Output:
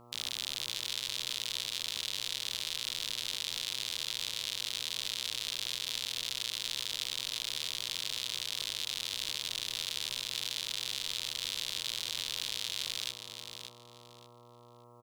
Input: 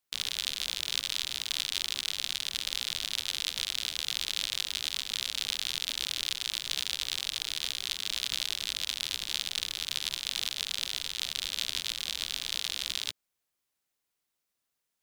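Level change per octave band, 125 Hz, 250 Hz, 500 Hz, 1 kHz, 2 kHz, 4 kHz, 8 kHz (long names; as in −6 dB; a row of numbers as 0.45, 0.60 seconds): +1.5, −0.5, +2.5, −2.0, −3.5, −3.0, −2.5 decibels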